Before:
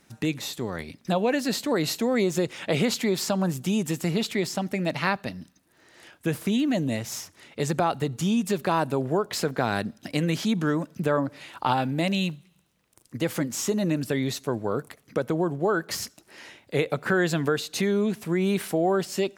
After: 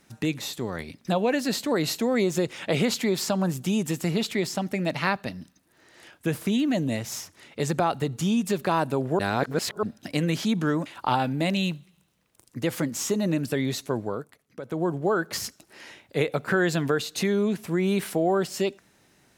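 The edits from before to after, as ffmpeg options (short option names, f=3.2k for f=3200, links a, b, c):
-filter_complex "[0:a]asplit=6[a][b][c][d][e][f];[a]atrim=end=9.192[g];[b]atrim=start=9.188:end=9.832,asetpts=PTS-STARTPTS,areverse[h];[c]atrim=start=9.828:end=10.862[i];[d]atrim=start=11.438:end=14.85,asetpts=PTS-STARTPTS,afade=t=out:st=3.162:d=0.25:silence=0.266073[j];[e]atrim=start=14.85:end=15.2,asetpts=PTS-STARTPTS,volume=-11.5dB[k];[f]atrim=start=15.2,asetpts=PTS-STARTPTS,afade=t=in:d=0.25:silence=0.266073[l];[g][h]acrossfade=d=0.004:c1=hsin:c2=hsin[m];[m][i]acrossfade=d=0.004:c1=hsin:c2=hsin[n];[j][k][l]concat=n=3:v=0:a=1[o];[n][o]acrossfade=d=0.004:c1=hsin:c2=hsin"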